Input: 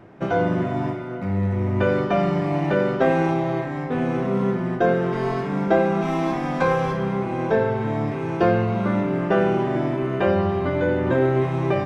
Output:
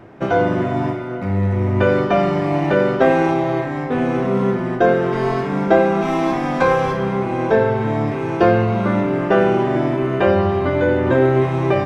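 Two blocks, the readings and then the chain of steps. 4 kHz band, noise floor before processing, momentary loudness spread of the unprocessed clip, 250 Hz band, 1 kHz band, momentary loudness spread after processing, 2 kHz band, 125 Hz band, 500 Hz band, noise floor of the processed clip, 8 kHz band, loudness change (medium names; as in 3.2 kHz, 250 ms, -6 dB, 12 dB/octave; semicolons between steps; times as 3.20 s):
+5.0 dB, -29 dBFS, 5 LU, +3.5 dB, +5.0 dB, 6 LU, +5.0 dB, +3.0 dB, +5.0 dB, -24 dBFS, no reading, +4.5 dB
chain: peaking EQ 170 Hz -6.5 dB 0.3 oct; trim +5 dB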